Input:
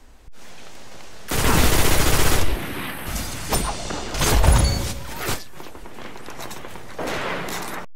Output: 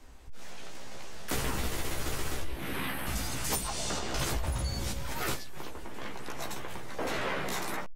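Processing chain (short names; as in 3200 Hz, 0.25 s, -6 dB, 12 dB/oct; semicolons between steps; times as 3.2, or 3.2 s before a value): 3.44–3.99 high shelf 4500 Hz +9 dB; compressor 12:1, threshold -24 dBFS, peak gain reduction 16 dB; doubler 15 ms -3.5 dB; gain -5.5 dB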